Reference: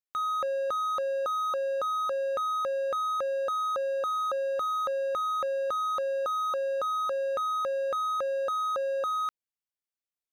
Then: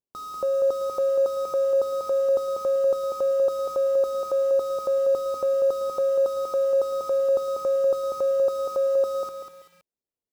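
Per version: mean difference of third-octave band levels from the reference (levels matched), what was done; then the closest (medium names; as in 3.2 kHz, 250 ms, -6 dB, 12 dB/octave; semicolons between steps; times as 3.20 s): 8.0 dB: de-hum 143.1 Hz, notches 3; in parallel at -8 dB: sample-rate reducer 6.5 kHz, jitter 20%; on the sum: FFT filter 110 Hz 0 dB, 410 Hz +5 dB, 1 kHz -7 dB, 1.8 kHz -20 dB, 4.2 kHz -8 dB; bit-crushed delay 193 ms, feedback 35%, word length 9-bit, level -6 dB; trim +2.5 dB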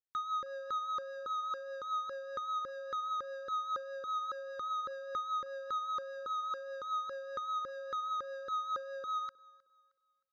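4.0 dB: low-pass 8.8 kHz 12 dB/octave; rotary cabinet horn 5 Hz; static phaser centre 2.6 kHz, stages 6; on a send: thinning echo 312 ms, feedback 33%, high-pass 190 Hz, level -23.5 dB; on the sum: trim -2.5 dB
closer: second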